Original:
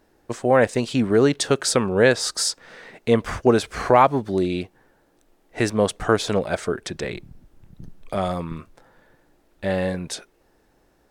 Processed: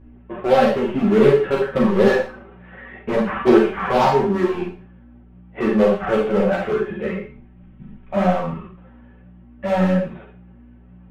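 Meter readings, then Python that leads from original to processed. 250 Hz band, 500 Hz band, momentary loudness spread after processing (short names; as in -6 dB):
+4.5 dB, +3.5 dB, 14 LU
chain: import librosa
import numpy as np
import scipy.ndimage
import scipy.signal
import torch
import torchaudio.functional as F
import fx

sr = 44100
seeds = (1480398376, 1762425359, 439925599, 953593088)

p1 = fx.cvsd(x, sr, bps=16000)
p2 = fx.highpass(p1, sr, hz=210.0, slope=6)
p3 = fx.noise_reduce_blind(p2, sr, reduce_db=7)
p4 = fx.lowpass(p3, sr, hz=1100.0, slope=6)
p5 = p4 + 0.62 * np.pad(p4, (int(5.3 * sr / 1000.0), 0))[:len(p4)]
p6 = 10.0 ** (-25.0 / 20.0) * (np.abs((p5 / 10.0 ** (-25.0 / 20.0) + 3.0) % 4.0 - 2.0) - 1.0)
p7 = p5 + (p6 * 10.0 ** (-4.5 / 20.0))
p8 = fx.add_hum(p7, sr, base_hz=60, snr_db=21)
p9 = p8 + fx.echo_single(p8, sr, ms=72, db=-11.0, dry=0)
p10 = fx.rev_schroeder(p9, sr, rt60_s=0.36, comb_ms=29, drr_db=0.5)
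p11 = fx.ensemble(p10, sr)
y = p11 * 10.0 ** (5.5 / 20.0)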